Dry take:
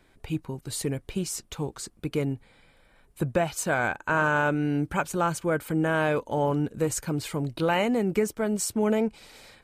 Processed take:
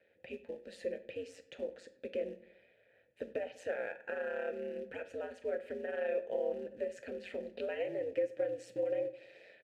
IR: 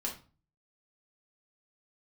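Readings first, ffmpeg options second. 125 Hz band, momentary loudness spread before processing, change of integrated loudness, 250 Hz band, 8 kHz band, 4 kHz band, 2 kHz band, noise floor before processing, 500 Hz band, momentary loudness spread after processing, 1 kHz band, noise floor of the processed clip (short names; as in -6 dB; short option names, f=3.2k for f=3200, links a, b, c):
under -30 dB, 9 LU, -12.0 dB, -21.0 dB, under -25 dB, under -15 dB, -16.5 dB, -61 dBFS, -7.5 dB, 11 LU, -21.5 dB, -69 dBFS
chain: -filter_complex "[0:a]highshelf=f=6.6k:g=-11,acompressor=threshold=-28dB:ratio=8,aeval=exprs='val(0)*sin(2*PI*91*n/s)':c=same,acrusher=bits=6:mode=log:mix=0:aa=0.000001,asplit=3[a][b][c];[a]bandpass=f=530:t=q:w=8,volume=0dB[d];[b]bandpass=f=1.84k:t=q:w=8,volume=-6dB[e];[c]bandpass=f=2.48k:t=q:w=8,volume=-9dB[f];[d][e][f]amix=inputs=3:normalize=0,asplit=2[g][h];[h]adelay=97,lowpass=f=3.5k:p=1,volume=-19dB,asplit=2[i][j];[j]adelay=97,lowpass=f=3.5k:p=1,volume=0.49,asplit=2[k][l];[l]adelay=97,lowpass=f=3.5k:p=1,volume=0.49,asplit=2[m][n];[n]adelay=97,lowpass=f=3.5k:p=1,volume=0.49[o];[g][i][k][m][o]amix=inputs=5:normalize=0,asplit=2[p][q];[1:a]atrim=start_sample=2205,asetrate=36162,aresample=44100,highshelf=f=6.2k:g=8[r];[q][r]afir=irnorm=-1:irlink=0,volume=-10.5dB[s];[p][s]amix=inputs=2:normalize=0,volume=5.5dB"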